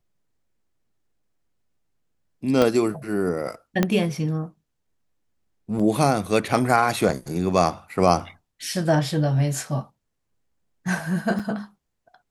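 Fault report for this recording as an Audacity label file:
2.620000	2.620000	pop -7 dBFS
3.830000	3.830000	pop -6 dBFS
5.790000	5.800000	dropout 5.7 ms
7.090000	7.090000	dropout 2 ms
11.390000	11.400000	dropout 6.1 ms

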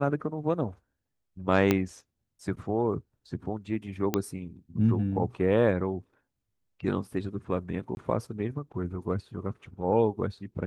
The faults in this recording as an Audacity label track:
1.710000	1.710000	pop -9 dBFS
4.140000	4.140000	pop -11 dBFS
7.950000	7.970000	dropout 21 ms

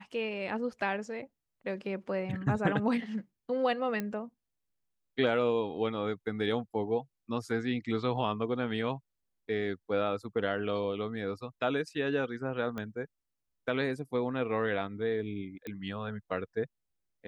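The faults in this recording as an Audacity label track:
4.000000	4.000000	pop -20 dBFS
12.780000	12.780000	pop -24 dBFS
15.670000	15.670000	pop -26 dBFS

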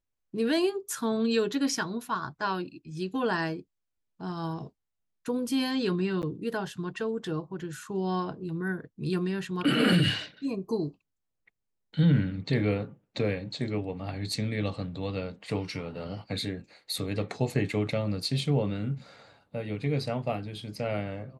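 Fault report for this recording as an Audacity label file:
6.220000	6.230000	dropout 9.4 ms

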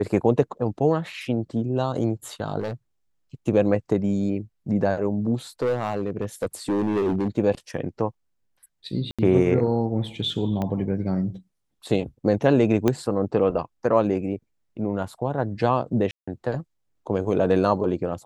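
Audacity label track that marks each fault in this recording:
2.600000	2.730000	clipped -24 dBFS
5.620000	7.280000	clipped -19 dBFS
9.110000	9.190000	dropout 76 ms
10.620000	10.620000	pop -16 dBFS
12.880000	12.880000	pop -8 dBFS
16.110000	16.270000	dropout 165 ms

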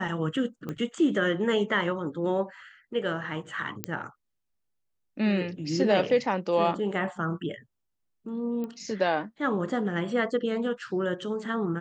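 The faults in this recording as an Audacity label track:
0.690000	0.690000	pop -22 dBFS
3.840000	3.840000	pop -12 dBFS
8.640000	8.640000	pop -24 dBFS

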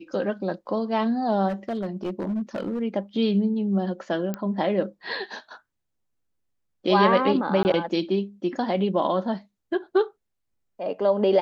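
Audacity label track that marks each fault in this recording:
1.480000	2.820000	clipped -23.5 dBFS
4.340000	4.340000	pop -16 dBFS
7.630000	7.650000	dropout 19 ms

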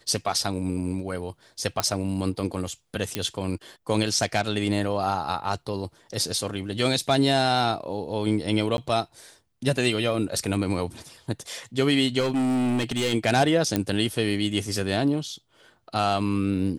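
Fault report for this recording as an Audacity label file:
1.800000	1.800000	pop -7 dBFS
3.150000	3.150000	pop -9 dBFS
6.550000	6.550000	dropout 3.1 ms
8.770000	8.780000	dropout 11 ms
12.190000	13.140000	clipped -21 dBFS
13.760000	13.760000	pop -9 dBFS

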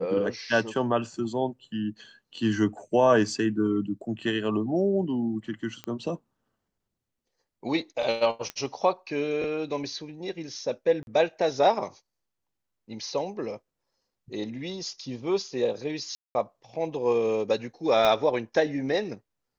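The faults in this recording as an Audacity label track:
5.840000	5.840000	pop -21 dBFS
8.500000	8.500000	pop -17 dBFS
11.030000	11.070000	dropout 41 ms
16.150000	16.350000	dropout 200 ms
18.050000	18.050000	pop -11 dBFS

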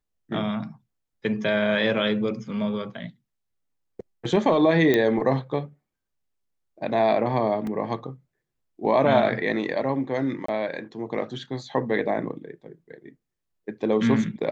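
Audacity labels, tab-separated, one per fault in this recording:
4.940000	4.940000	pop -9 dBFS
7.670000	7.670000	dropout 2.5 ms
10.460000	10.480000	dropout 24 ms

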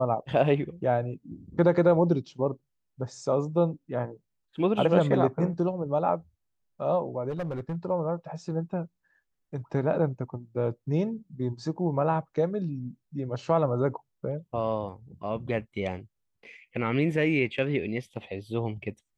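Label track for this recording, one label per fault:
7.290000	7.850000	clipped -28 dBFS

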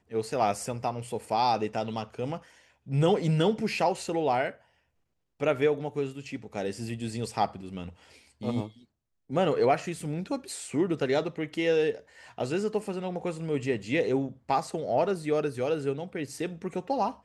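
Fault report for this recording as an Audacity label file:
10.000000	10.000000	dropout 2.7 ms

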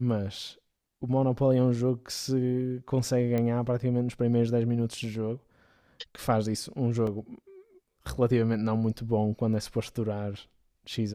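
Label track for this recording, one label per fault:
3.380000	3.380000	pop -18 dBFS
7.070000	7.070000	dropout 2.9 ms

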